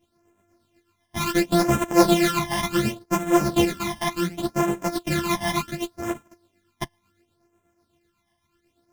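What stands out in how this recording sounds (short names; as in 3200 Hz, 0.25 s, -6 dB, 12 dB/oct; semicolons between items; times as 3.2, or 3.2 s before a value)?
a buzz of ramps at a fixed pitch in blocks of 128 samples; phasing stages 12, 0.69 Hz, lowest notch 430–4500 Hz; tremolo triangle 8.1 Hz, depth 55%; a shimmering, thickened sound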